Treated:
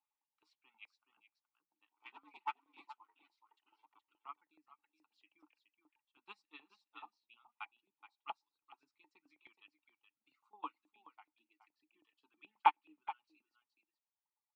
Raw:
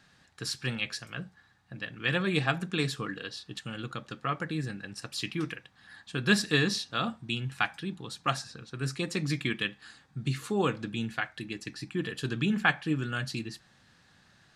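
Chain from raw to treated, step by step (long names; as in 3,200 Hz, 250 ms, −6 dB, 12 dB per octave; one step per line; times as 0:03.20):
0:01.89–0:04.11: sub-harmonics by changed cycles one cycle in 2, inverted
formant filter u
high-shelf EQ 4,100 Hz −6.5 dB
notch filter 1,700 Hz, Q 6.6
single-tap delay 422 ms −5.5 dB
reverb reduction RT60 1.9 s
auto-filter high-pass saw up 9.4 Hz 830–1,800 Hz
parametric band 2,200 Hz −11.5 dB 0.23 octaves
expander for the loud parts 2.5 to 1, over −53 dBFS
level +13.5 dB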